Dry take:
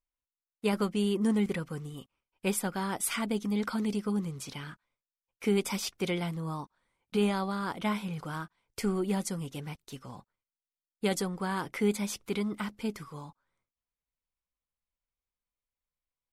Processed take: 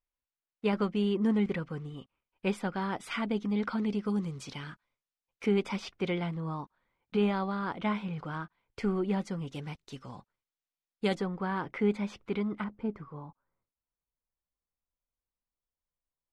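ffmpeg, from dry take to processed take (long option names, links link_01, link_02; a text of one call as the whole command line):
ffmpeg -i in.wav -af "asetnsamples=nb_out_samples=441:pad=0,asendcmd='4.05 lowpass f 5900;5.46 lowpass f 3000;9.47 lowpass f 5700;11.15 lowpass f 2400;12.64 lowpass f 1200',lowpass=3300" out.wav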